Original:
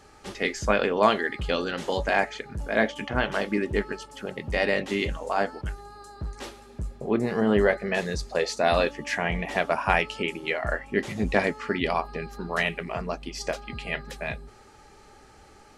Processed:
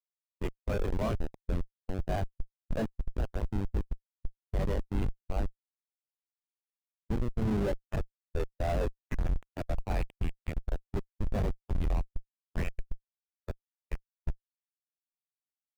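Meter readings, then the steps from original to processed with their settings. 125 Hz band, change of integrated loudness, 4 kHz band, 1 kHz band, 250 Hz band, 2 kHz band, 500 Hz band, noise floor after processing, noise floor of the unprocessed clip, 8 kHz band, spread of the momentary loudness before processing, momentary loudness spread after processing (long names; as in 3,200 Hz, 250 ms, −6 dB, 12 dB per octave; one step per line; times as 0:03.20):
+0.5 dB, −9.0 dB, −19.0 dB, −15.5 dB, −8.0 dB, −20.5 dB, −12.5 dB, below −85 dBFS, −52 dBFS, −15.5 dB, 14 LU, 13 LU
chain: dynamic equaliser 2,600 Hz, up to +5 dB, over −43 dBFS, Q 3.1
comparator with hysteresis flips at −20 dBFS
every bin expanded away from the loudest bin 1.5 to 1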